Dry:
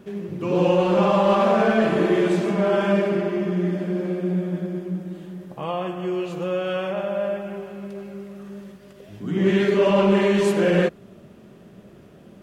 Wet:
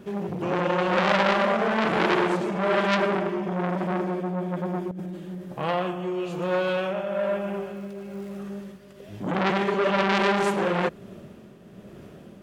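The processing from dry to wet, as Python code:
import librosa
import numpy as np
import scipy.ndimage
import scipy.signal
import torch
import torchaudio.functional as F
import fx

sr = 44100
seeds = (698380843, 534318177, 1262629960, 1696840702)

y = fx.over_compress(x, sr, threshold_db=-33.0, ratio=-1.0, at=(4.91, 5.35))
y = fx.dmg_crackle(y, sr, seeds[0], per_s=560.0, level_db=-48.0, at=(7.75, 8.36), fade=0.02)
y = fx.tremolo_shape(y, sr, shape='triangle', hz=1.1, depth_pct=55)
y = fx.transformer_sat(y, sr, knee_hz=2300.0)
y = y * 10.0 ** (4.0 / 20.0)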